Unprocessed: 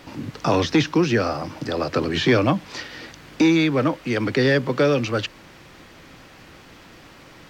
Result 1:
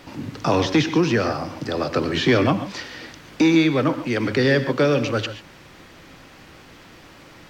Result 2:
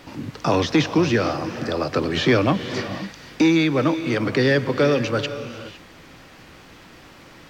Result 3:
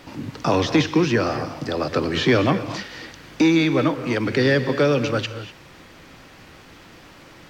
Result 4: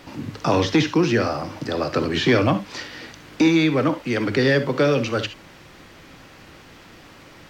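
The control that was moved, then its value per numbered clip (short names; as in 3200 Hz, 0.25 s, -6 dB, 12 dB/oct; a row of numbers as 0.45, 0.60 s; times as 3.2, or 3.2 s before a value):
non-linear reverb, gate: 160, 530, 270, 90 ms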